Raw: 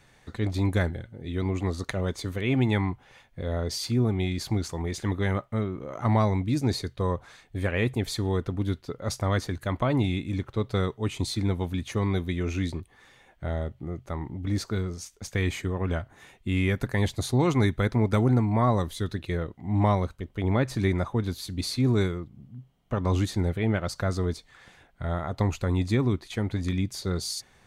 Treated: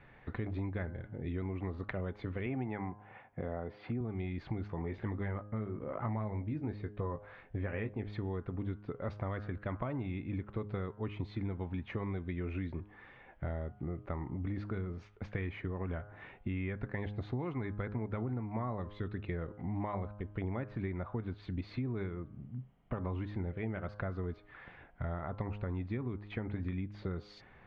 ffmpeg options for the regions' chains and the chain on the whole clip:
ffmpeg -i in.wav -filter_complex "[0:a]asettb=1/sr,asplit=3[link_01][link_02][link_03];[link_01]atrim=end=2.464[link_04];[link_02]atrim=start=2.46:end=4.01,asetpts=PTS-STARTPTS,afade=type=in:duration=0.004:curve=qsin,afade=type=out:start_time=1.546:duration=0.004:curve=qsin,highpass=110,lowpass=2400,equalizer=frequency=750:width=6.1:gain=8.5[link_05];[link_03]atrim=start=4.006[link_06];[link_04][link_05]acrossfade=duration=0.004:curve1=hsin:curve2=qsin[link_07];[link_07][link_06]acrossfade=duration=0.004:curve1=qsin:curve2=hsin,asettb=1/sr,asplit=3[link_08][link_09][link_10];[link_08]atrim=end=4.674[link_11];[link_09]atrim=start=4.67:end=8.13,asetpts=PTS-STARTPTS,afade=type=in:duration=0.004:curve=qsin,afade=type=out:start_time=3.456:duration=0.004:curve=qsin,highshelf=frequency=4300:gain=-10,asplit=2[link_12][link_13];[link_13]adelay=19,volume=-8dB[link_14];[link_12][link_14]amix=inputs=2:normalize=0,atrim=end_sample=152586[link_15];[link_10]atrim=start=8.126[link_16];[link_11][link_15]acrossfade=duration=0.004:curve1=hsin:curve2=qsin[link_17];[link_17][link_16]acrossfade=duration=0.004:curve1=qsin:curve2=hsin,lowpass=frequency=2500:width=0.5412,lowpass=frequency=2500:width=1.3066,bandreject=frequency=103.3:width_type=h:width=4,bandreject=frequency=206.6:width_type=h:width=4,bandreject=frequency=309.9:width_type=h:width=4,bandreject=frequency=413.2:width_type=h:width=4,bandreject=frequency=516.5:width_type=h:width=4,bandreject=frequency=619.8:width_type=h:width=4,bandreject=frequency=723.1:width_type=h:width=4,bandreject=frequency=826.4:width_type=h:width=4,bandreject=frequency=929.7:width_type=h:width=4,bandreject=frequency=1033:width_type=h:width=4,bandreject=frequency=1136.3:width_type=h:width=4,bandreject=frequency=1239.6:width_type=h:width=4,bandreject=frequency=1342.9:width_type=h:width=4,bandreject=frequency=1446.2:width_type=h:width=4,bandreject=frequency=1549.5:width_type=h:width=4,bandreject=frequency=1652.8:width_type=h:width=4,acompressor=threshold=-36dB:ratio=6,volume=1dB" out.wav

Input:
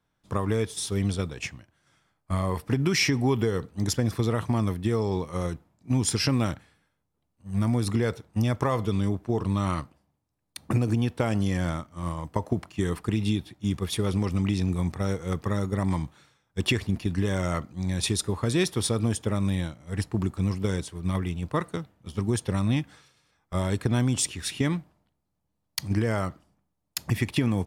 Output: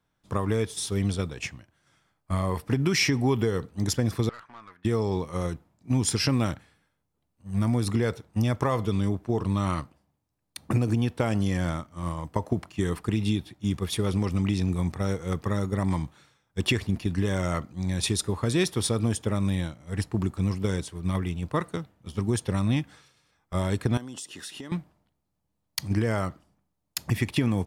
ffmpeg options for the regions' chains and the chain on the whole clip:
ffmpeg -i in.wav -filter_complex "[0:a]asettb=1/sr,asplit=3[link_01][link_02][link_03];[link_01]atrim=end=4.294[link_04];[link_02]atrim=start=4.29:end=4.85,asetpts=PTS-STARTPTS,afade=type=in:duration=0.004:curve=qsin,afade=type=out:start_time=0.556:duration=0.004:curve=qsin,bandpass=frequency=1500:width_type=q:width=3.3,aeval=exprs='(tanh(89.1*val(0)+0.3)-tanh(0.3))/89.1':channel_layout=same[link_05];[link_03]atrim=start=4.846[link_06];[link_04][link_05]acrossfade=duration=0.004:curve1=hsin:curve2=qsin[link_07];[link_07][link_06]acrossfade=duration=0.004:curve1=qsin:curve2=hsin,asettb=1/sr,asplit=3[link_08][link_09][link_10];[link_08]atrim=end=23.974[link_11];[link_09]atrim=start=23.97:end=24.72,asetpts=PTS-STARTPTS,afade=type=in:duration=0.004:curve=qsin,afade=type=out:start_time=0.746:duration=0.004:curve=qsin,highpass=240,bandreject=frequency=2300:width=5.1,acompressor=threshold=-36dB:ratio=6:attack=3.2:release=140:knee=1:detection=peak[link_12];[link_10]atrim=start=24.716[link_13];[link_11][link_12]acrossfade=duration=0.004:curve1=hsin:curve2=qsin[link_14];[link_14][link_13]acrossfade=duration=0.004:curve1=qsin:curve2=hsin" out.wav

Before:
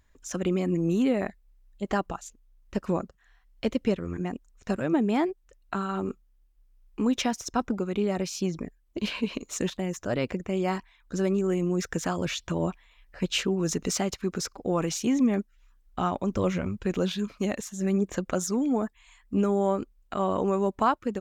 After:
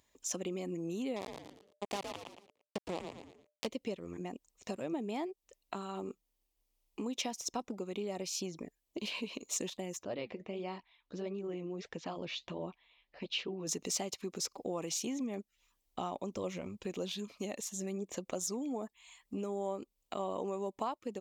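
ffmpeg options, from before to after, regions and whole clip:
ffmpeg -i in.wav -filter_complex "[0:a]asettb=1/sr,asplit=3[link_01][link_02][link_03];[link_01]atrim=end=1.164[link_04];[link_02]atrim=start=1.16:end=3.67,asetpts=PTS-STARTPTS,afade=type=in:duration=0.004:curve=qsin,afade=type=out:start_time=2.506:duration=0.004:curve=qsin,acrusher=bits=3:mix=0:aa=0.5,asplit=5[link_05][link_06][link_07][link_08][link_09];[link_06]adelay=114,afreqshift=-150,volume=-7dB[link_10];[link_07]adelay=228,afreqshift=-300,volume=-16.1dB[link_11];[link_08]adelay=342,afreqshift=-450,volume=-25.2dB[link_12];[link_09]adelay=456,afreqshift=-600,volume=-34.4dB[link_13];[link_05][link_10][link_11][link_12][link_13]amix=inputs=5:normalize=0,atrim=end_sample=110691[link_14];[link_03]atrim=start=3.666[link_15];[link_04][link_14]acrossfade=duration=0.004:curve1=hsin:curve2=qsin[link_16];[link_16][link_15]acrossfade=duration=0.004:curve1=qsin:curve2=hsin,asettb=1/sr,asplit=3[link_17][link_18][link_19];[link_17]atrim=end=10.034[link_20];[link_18]atrim=start=10.03:end=13.67,asetpts=PTS-STARTPTS,afade=type=in:duration=0.004:curve=qsin,afade=type=out:start_time=3.636:duration=0.004:curve=qsin,lowpass=frequency=4400:width=0.5412,lowpass=frequency=4400:width=1.3066,flanger=delay=0.7:depth=7.3:regen=-64:speed=1.5:shape=sinusoidal[link_21];[link_19]atrim=start=13.666[link_22];[link_20][link_21]acrossfade=duration=0.004:curve1=hsin:curve2=qsin[link_23];[link_23][link_22]acrossfade=duration=0.004:curve1=qsin:curve2=hsin,acompressor=threshold=-35dB:ratio=2.5,highpass=frequency=540:poles=1,equalizer=frequency=1500:width=2.1:gain=-14.5,volume=2.5dB" out.wav

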